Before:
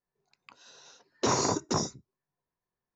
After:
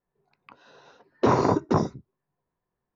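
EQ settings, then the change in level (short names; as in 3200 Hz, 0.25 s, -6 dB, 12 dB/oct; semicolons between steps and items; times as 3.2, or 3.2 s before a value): air absorption 200 m; high shelf 2600 Hz -12 dB; +8.5 dB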